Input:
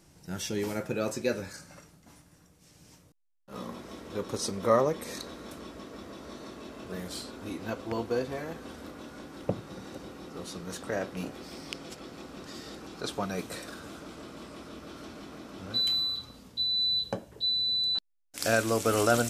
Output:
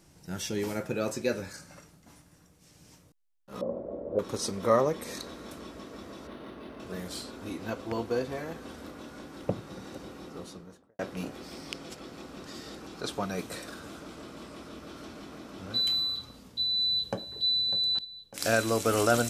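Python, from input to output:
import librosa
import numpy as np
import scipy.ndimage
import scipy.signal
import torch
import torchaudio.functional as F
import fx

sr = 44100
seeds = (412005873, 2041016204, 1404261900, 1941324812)

y = fx.lowpass_res(x, sr, hz=570.0, q=6.5, at=(3.61, 4.19))
y = fx.resample_linear(y, sr, factor=6, at=(6.27, 6.8))
y = fx.studio_fade_out(y, sr, start_s=10.22, length_s=0.77)
y = fx.echo_throw(y, sr, start_s=16.52, length_s=0.92, ms=600, feedback_pct=65, wet_db=-14.0)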